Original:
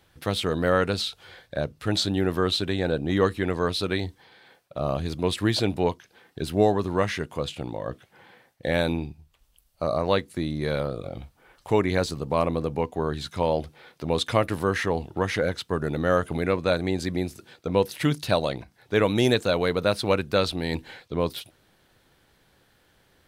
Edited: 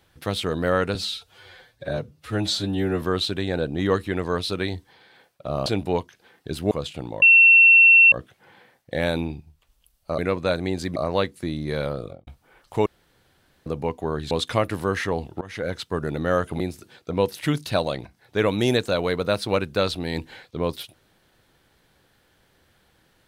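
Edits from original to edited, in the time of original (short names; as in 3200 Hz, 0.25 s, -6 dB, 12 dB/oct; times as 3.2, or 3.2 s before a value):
0.95–2.33 stretch 1.5×
4.97–5.57 cut
6.62–7.33 cut
7.84 add tone 2710 Hz -9 dBFS 0.90 s
10.96–11.21 studio fade out
11.8–12.6 room tone
13.25–14.1 cut
15.2–15.56 fade in, from -22.5 dB
16.39–17.17 move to 9.9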